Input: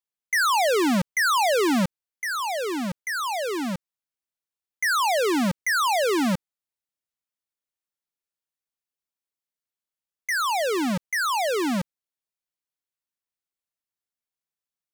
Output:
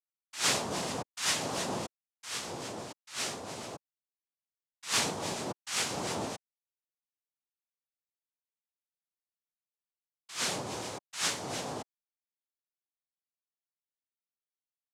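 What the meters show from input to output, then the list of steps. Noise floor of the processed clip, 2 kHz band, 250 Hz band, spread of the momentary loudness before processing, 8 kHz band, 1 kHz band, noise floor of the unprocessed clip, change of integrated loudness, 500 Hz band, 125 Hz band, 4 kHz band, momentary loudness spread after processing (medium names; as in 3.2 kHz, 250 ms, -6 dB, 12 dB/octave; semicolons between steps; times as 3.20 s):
under -85 dBFS, -14.0 dB, -16.0 dB, 9 LU, -2.0 dB, -14.5 dB, under -85 dBFS, -10.0 dB, -14.0 dB, -9.5 dB, -4.5 dB, 15 LU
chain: harmonic tremolo 2.9 Hz, depth 50%, crossover 470 Hz; four-pole ladder low-pass 1.5 kHz, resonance 60%; noise-vocoded speech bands 2; trim -2.5 dB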